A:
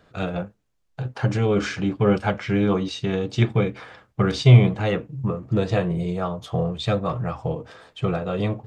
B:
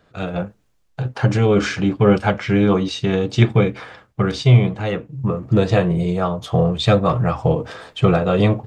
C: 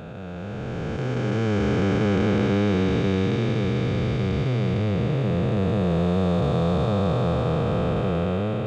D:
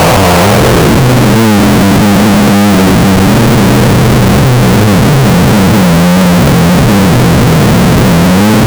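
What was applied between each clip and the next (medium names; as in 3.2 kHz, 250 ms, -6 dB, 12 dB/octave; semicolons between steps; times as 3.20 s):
level rider gain up to 16.5 dB; trim -1 dB
spectral blur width 1310 ms
fuzz box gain 38 dB, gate -41 dBFS; low-pass sweep 930 Hz -> 250 Hz, 0.42–1.00 s; Schmitt trigger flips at -35 dBFS; trim +7 dB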